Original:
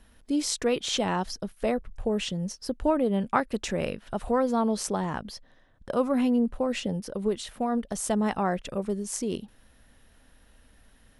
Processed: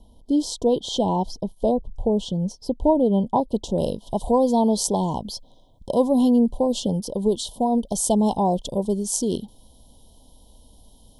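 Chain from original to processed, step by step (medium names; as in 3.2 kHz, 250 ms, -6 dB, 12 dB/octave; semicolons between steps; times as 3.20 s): Chebyshev band-stop 1–3.1 kHz, order 5; treble shelf 3 kHz -10.5 dB, from 3.78 s +2.5 dB; trim +7 dB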